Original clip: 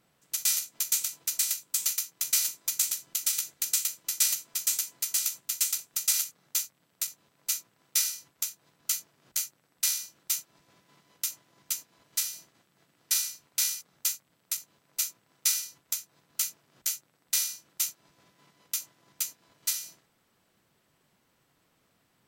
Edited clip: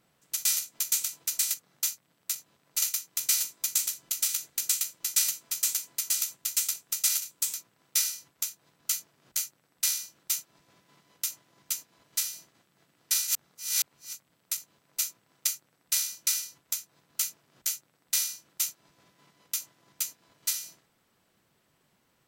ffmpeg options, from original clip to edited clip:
-filter_complex "[0:a]asplit=9[s0][s1][s2][s3][s4][s5][s6][s7][s8];[s0]atrim=end=1.542[s9];[s1]atrim=start=6.258:end=7.542[s10];[s2]atrim=start=1.858:end=6.262[s11];[s3]atrim=start=1.538:end=1.862[s12];[s4]atrim=start=7.538:end=13.272[s13];[s5]atrim=start=13.268:end=14.132,asetpts=PTS-STARTPTS,areverse[s14];[s6]atrim=start=14.128:end=15.472[s15];[s7]atrim=start=9.378:end=10.182[s16];[s8]atrim=start=15.468[s17];[s9][s10]acrossfade=d=0.004:c1=hsin:c2=hsin[s18];[s18][s11]acrossfade=d=0.004:c1=hsin:c2=hsin[s19];[s19][s12]acrossfade=d=0.004:c1=hsin:c2=hsin[s20];[s20][s13]acrossfade=d=0.004:c1=hsin:c2=hsin[s21];[s21][s14]acrossfade=d=0.004:c1=hsin:c2=hsin[s22];[s22][s15]acrossfade=d=0.004:c1=hsin:c2=hsin[s23];[s23][s16]acrossfade=d=0.004:c1=hsin:c2=hsin[s24];[s24][s17]acrossfade=d=0.004:c1=hsin:c2=hsin"

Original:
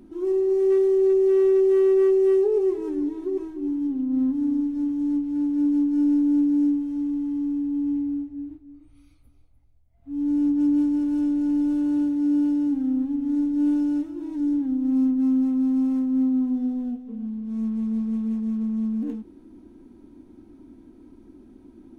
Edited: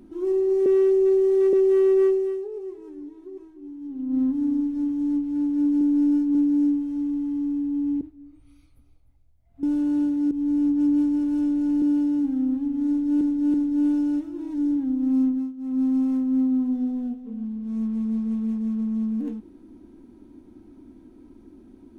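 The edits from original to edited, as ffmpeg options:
-filter_complex "[0:a]asplit=15[s0][s1][s2][s3][s4][s5][s6][s7][s8][s9][s10][s11][s12][s13][s14];[s0]atrim=end=0.662[s15];[s1]atrim=start=0.658:end=1.532,asetpts=PTS-STARTPTS,areverse[s16];[s2]atrim=start=1.528:end=2.5,asetpts=PTS-STARTPTS,afade=t=out:st=0.532:d=0.44:c=qua:silence=0.237137[s17];[s3]atrim=start=2.5:end=3.71,asetpts=PTS-STARTPTS,volume=0.237[s18];[s4]atrim=start=3.71:end=5.812,asetpts=PTS-STARTPTS,afade=t=in:d=0.44:c=qua:silence=0.237137[s19];[s5]atrim=start=5.808:end=6.352,asetpts=PTS-STARTPTS,areverse[s20];[s6]atrim=start=6.348:end=8.012[s21];[s7]atrim=start=8.488:end=10.112[s22];[s8]atrim=start=11.618:end=12.302[s23];[s9]atrim=start=10.108:end=11.622[s24];[s10]atrim=start=12.298:end=13.692[s25];[s11]atrim=start=13.358:end=13.692[s26];[s12]atrim=start=13.358:end=15.35,asetpts=PTS-STARTPTS,afade=t=out:st=1.752:d=0.24:silence=0.105925[s27];[s13]atrim=start=15.35:end=15.39,asetpts=PTS-STARTPTS,volume=0.106[s28];[s14]atrim=start=15.39,asetpts=PTS-STARTPTS,afade=t=in:d=0.24:silence=0.105925[s29];[s15][s16]acrossfade=d=0.004:c1=hsin:c2=hsin[s30];[s17][s18][s19]concat=n=3:v=0:a=1[s31];[s30][s31]acrossfade=d=0.004:c1=hsin:c2=hsin[s32];[s32][s20]acrossfade=d=0.004:c1=hsin:c2=hsin[s33];[s33][s21]acrossfade=d=0.004:c1=hsin:c2=hsin[s34];[s34][s22]acrossfade=d=0.004:c1=hsin:c2=hsin[s35];[s35][s23]acrossfade=d=0.004:c1=hsin:c2=hsin[s36];[s36][s24]acrossfade=d=0.004:c1=hsin:c2=hsin[s37];[s37][s25]acrossfade=d=0.004:c1=hsin:c2=hsin[s38];[s38][s26]acrossfade=d=0.004:c1=hsin:c2=hsin[s39];[s27][s28][s29]concat=n=3:v=0:a=1[s40];[s39][s40]acrossfade=d=0.004:c1=hsin:c2=hsin"

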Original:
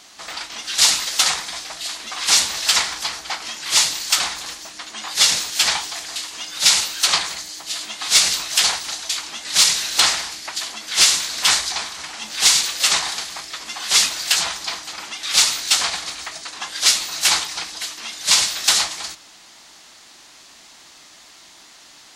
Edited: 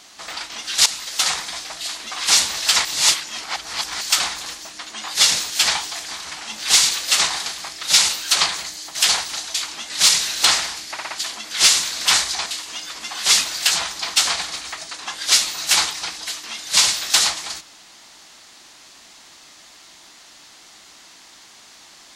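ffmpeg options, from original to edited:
-filter_complex "[0:a]asplit=13[s0][s1][s2][s3][s4][s5][s6][s7][s8][s9][s10][s11][s12];[s0]atrim=end=0.86,asetpts=PTS-STARTPTS,afade=t=out:st=0.856:d=0.004:c=hsin:silence=0.211349[s13];[s1]atrim=start=0.86:end=2.852,asetpts=PTS-STARTPTS,afade=t=in:d=0.54:silence=0.211349[s14];[s2]atrim=start=2.848:end=4.012,asetpts=PTS-STARTPTS,areverse[s15];[s3]atrim=start=4.008:end=6.112[s16];[s4]atrim=start=11.828:end=13.552[s17];[s5]atrim=start=6.548:end=7.672[s18];[s6]atrim=start=8.498:end=10.532[s19];[s7]atrim=start=10.468:end=10.532[s20];[s8]atrim=start=10.468:end=10.532[s21];[s9]atrim=start=10.468:end=11.832[s22];[s10]atrim=start=6.108:end=6.552[s23];[s11]atrim=start=13.548:end=14.812[s24];[s12]atrim=start=15.698[s25];[s13][s14]concat=n=2:v=0:a=1[s26];[s26][s15]acrossfade=d=0.004:c1=hsin:c2=hsin[s27];[s27][s16]acrossfade=d=0.004:c1=hsin:c2=hsin[s28];[s28][s17]acrossfade=d=0.004:c1=hsin:c2=hsin[s29];[s29][s18]acrossfade=d=0.004:c1=hsin:c2=hsin[s30];[s30][s19]acrossfade=d=0.004:c1=hsin:c2=hsin[s31];[s31][s20]acrossfade=d=0.004:c1=hsin:c2=hsin[s32];[s32][s21]acrossfade=d=0.004:c1=hsin:c2=hsin[s33];[s33][s22]acrossfade=d=0.004:c1=hsin:c2=hsin[s34];[s34][s23]acrossfade=d=0.004:c1=hsin:c2=hsin[s35];[s35][s24]acrossfade=d=0.004:c1=hsin:c2=hsin[s36];[s36][s25]acrossfade=d=0.004:c1=hsin:c2=hsin"

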